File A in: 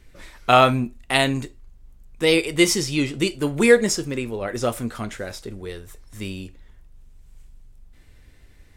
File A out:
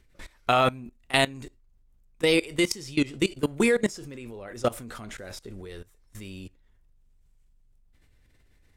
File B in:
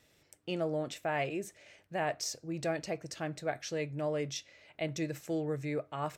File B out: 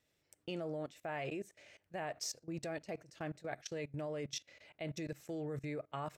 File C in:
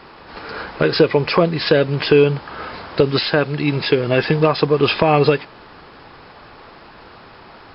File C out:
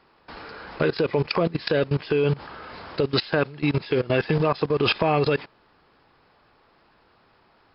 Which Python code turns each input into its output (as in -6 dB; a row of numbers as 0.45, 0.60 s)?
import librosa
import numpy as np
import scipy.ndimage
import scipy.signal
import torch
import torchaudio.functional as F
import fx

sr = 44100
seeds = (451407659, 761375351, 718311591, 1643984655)

y = fx.level_steps(x, sr, step_db=20)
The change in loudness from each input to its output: -5.0, -6.5, -7.0 LU